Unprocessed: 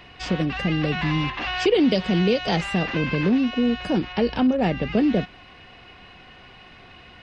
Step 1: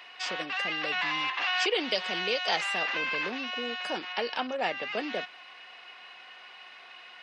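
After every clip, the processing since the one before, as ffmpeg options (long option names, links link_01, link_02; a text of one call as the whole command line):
ffmpeg -i in.wav -af "highpass=830" out.wav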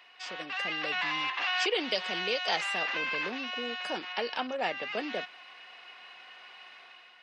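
ffmpeg -i in.wav -af "dynaudnorm=framelen=130:gausssize=7:maxgain=6.5dB,volume=-8dB" out.wav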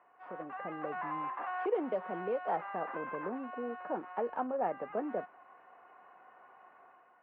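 ffmpeg -i in.wav -af "lowpass=frequency=1200:width=0.5412,lowpass=frequency=1200:width=1.3066" out.wav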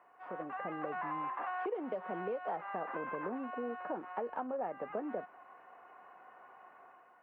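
ffmpeg -i in.wav -af "acompressor=threshold=-36dB:ratio=5,volume=1.5dB" out.wav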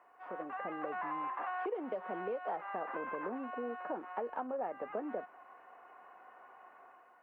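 ffmpeg -i in.wav -af "equalizer=frequency=150:width_type=o:width=0.66:gain=-8.5" out.wav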